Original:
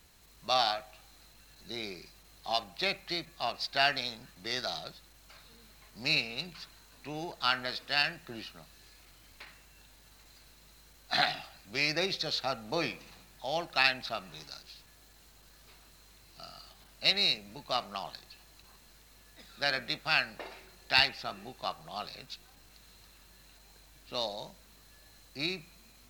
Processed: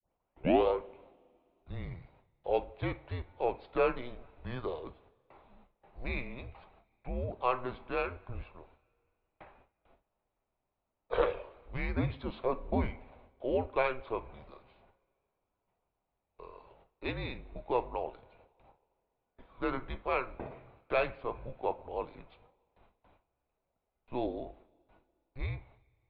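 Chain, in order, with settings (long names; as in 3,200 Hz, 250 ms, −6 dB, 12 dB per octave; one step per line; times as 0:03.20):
turntable start at the beginning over 0.68 s
noise gate with hold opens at −45 dBFS
graphic EQ with 10 bands 125 Hz −9 dB, 250 Hz +11 dB, 1,000 Hz +10 dB, 2,000 Hz −11 dB
single-sideband voice off tune −250 Hz 160–2,800 Hz
coupled-rooms reverb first 0.28 s, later 2.4 s, from −21 dB, DRR 13.5 dB
level −1.5 dB
MP3 48 kbit/s 32,000 Hz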